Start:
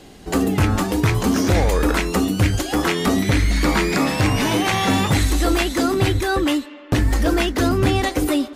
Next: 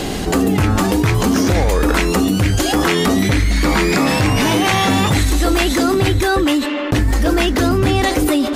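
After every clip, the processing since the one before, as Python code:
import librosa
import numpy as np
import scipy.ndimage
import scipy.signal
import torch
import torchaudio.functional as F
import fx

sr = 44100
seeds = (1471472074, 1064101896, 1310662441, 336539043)

y = fx.env_flatten(x, sr, amount_pct=70)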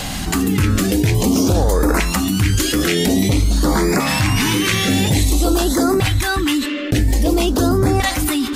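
y = fx.high_shelf(x, sr, hz=7000.0, db=4.5)
y = fx.filter_lfo_notch(y, sr, shape='saw_up', hz=0.5, low_hz=350.0, high_hz=3400.0, q=0.71)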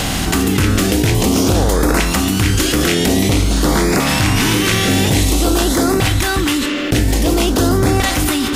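y = fx.bin_compress(x, sr, power=0.6)
y = y * librosa.db_to_amplitude(-1.5)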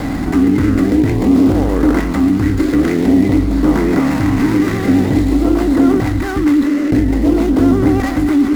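y = scipy.signal.medfilt(x, 15)
y = fx.small_body(y, sr, hz=(280.0, 2000.0), ring_ms=45, db=11)
y = fx.vibrato(y, sr, rate_hz=9.3, depth_cents=53.0)
y = y * librosa.db_to_amplitude(-2.5)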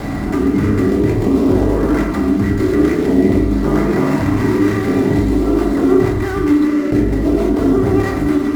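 y = fx.rev_fdn(x, sr, rt60_s=0.94, lf_ratio=0.9, hf_ratio=0.3, size_ms=15.0, drr_db=-1.5)
y = y * librosa.db_to_amplitude(-4.5)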